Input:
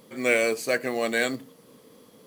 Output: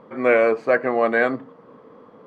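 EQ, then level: resonant low-pass 1.2 kHz, resonance Q 1.6; bass shelf 360 Hz -5.5 dB; +8.0 dB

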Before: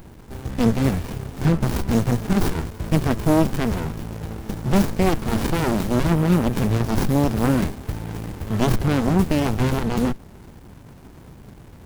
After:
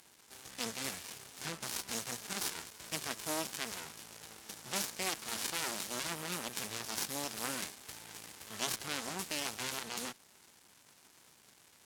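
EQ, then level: band-pass filter 7.5 kHz, Q 0.67; 0.0 dB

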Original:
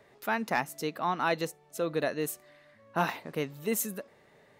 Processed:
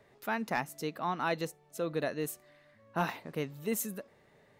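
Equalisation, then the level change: bass shelf 170 Hz +6 dB; -4.0 dB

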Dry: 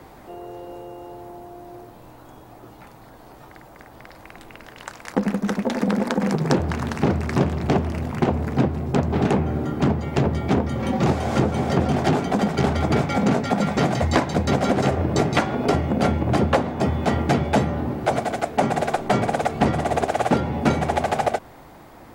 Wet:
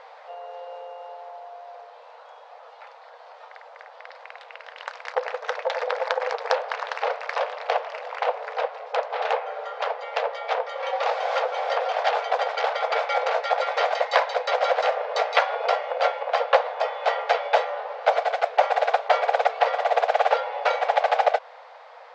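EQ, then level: brick-wall FIR high-pass 450 Hz; low-pass 4.7 kHz 24 dB/octave; +2.0 dB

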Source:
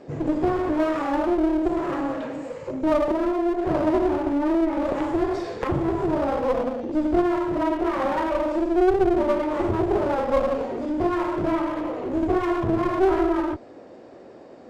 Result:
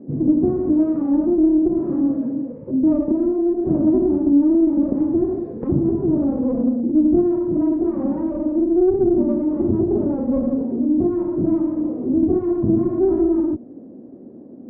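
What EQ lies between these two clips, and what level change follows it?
band-pass filter 240 Hz, Q 2.9; distance through air 75 m; tilt EQ -3.5 dB/octave; +7.0 dB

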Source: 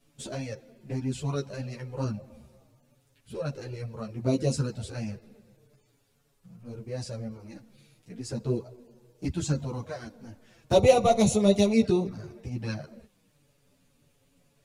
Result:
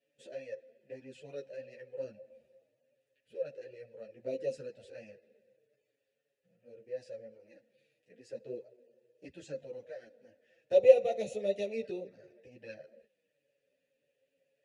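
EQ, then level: vowel filter e; treble shelf 6.3 kHz +10.5 dB; 0.0 dB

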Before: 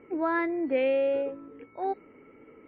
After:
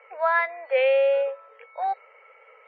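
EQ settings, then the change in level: steep high-pass 500 Hz 72 dB/octave; distance through air 150 m; treble shelf 2.1 kHz +8.5 dB; +6.0 dB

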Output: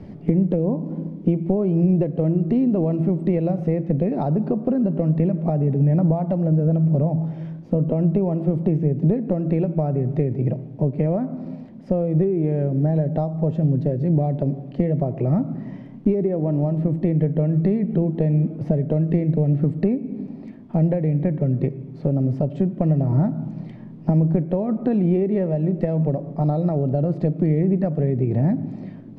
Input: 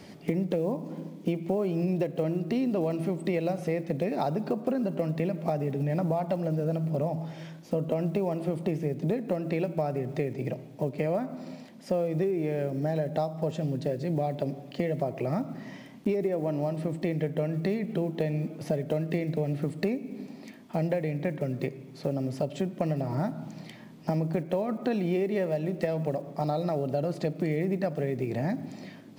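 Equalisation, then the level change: tilt EQ -4.5 dB/octave; treble shelf 5.2 kHz -7 dB; 0.0 dB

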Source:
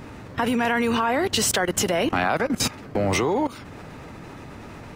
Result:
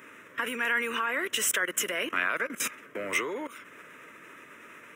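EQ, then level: high-pass 590 Hz 12 dB/octave; static phaser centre 1.9 kHz, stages 4; 0.0 dB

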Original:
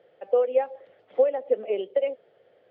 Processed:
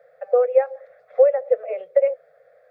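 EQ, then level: Chebyshev band-stop 160–420 Hz, order 4; static phaser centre 610 Hz, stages 8; +8.5 dB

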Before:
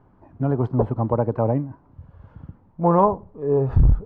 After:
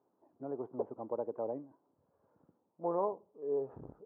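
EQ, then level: ladder band-pass 530 Hz, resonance 25%; -4.0 dB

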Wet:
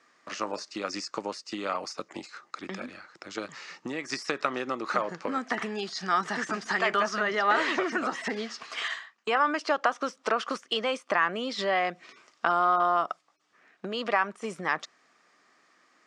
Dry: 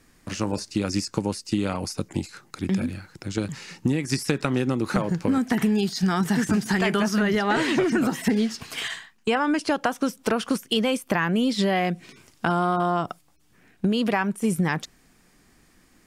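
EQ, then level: cabinet simulation 430–6600 Hz, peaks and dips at 620 Hz +5 dB, 1.2 kHz +10 dB, 1.9 kHz +4 dB; -4.0 dB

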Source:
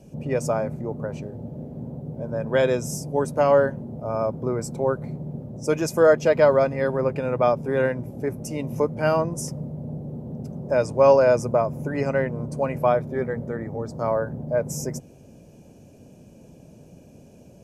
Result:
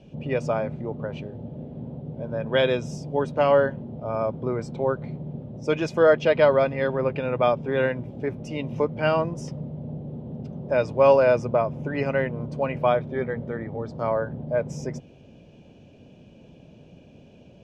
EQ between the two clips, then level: resonant low-pass 3.3 kHz, resonance Q 3; -1.5 dB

